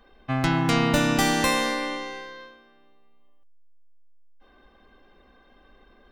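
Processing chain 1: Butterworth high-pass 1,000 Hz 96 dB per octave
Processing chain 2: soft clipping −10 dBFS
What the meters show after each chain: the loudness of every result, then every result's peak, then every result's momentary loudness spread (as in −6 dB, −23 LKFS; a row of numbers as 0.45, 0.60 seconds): −27.0, −24.0 LKFS; −12.0, −11.0 dBFS; 16, 14 LU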